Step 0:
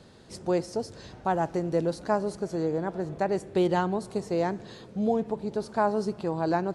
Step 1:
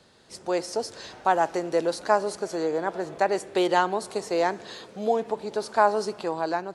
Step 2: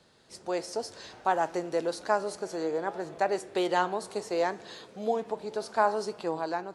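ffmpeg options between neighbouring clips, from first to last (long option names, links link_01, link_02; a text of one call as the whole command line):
ffmpeg -i in.wav -filter_complex "[0:a]lowshelf=frequency=470:gain=-10.5,acrossover=split=250[link_01][link_02];[link_01]alimiter=level_in=19.5dB:limit=-24dB:level=0:latency=1,volume=-19.5dB[link_03];[link_02]dynaudnorm=framelen=110:gausssize=9:maxgain=8.5dB[link_04];[link_03][link_04]amix=inputs=2:normalize=0" out.wav
ffmpeg -i in.wav -af "flanger=delay=5.6:depth=6.3:regen=84:speed=0.64:shape=triangular" out.wav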